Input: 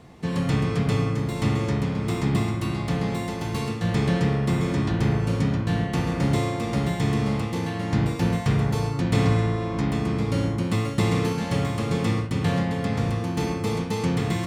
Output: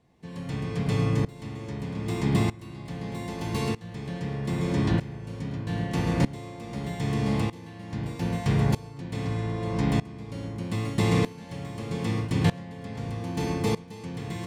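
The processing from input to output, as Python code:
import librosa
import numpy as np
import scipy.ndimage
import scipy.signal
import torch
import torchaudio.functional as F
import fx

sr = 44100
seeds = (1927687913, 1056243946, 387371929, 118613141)

y = fx.notch(x, sr, hz=1300.0, q=5.7)
y = y + 10.0 ** (-15.5 / 20.0) * np.pad(y, (int(507 * sr / 1000.0), 0))[:len(y)]
y = fx.tremolo_decay(y, sr, direction='swelling', hz=0.8, depth_db=20)
y = y * 10.0 ** (2.0 / 20.0)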